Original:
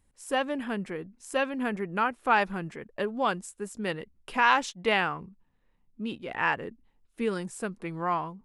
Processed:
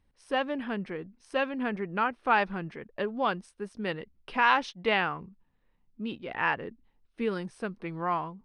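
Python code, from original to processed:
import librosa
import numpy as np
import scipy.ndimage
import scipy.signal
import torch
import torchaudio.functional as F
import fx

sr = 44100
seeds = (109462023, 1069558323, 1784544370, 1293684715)

y = scipy.signal.savgol_filter(x, 15, 4, mode='constant')
y = y * librosa.db_to_amplitude(-1.0)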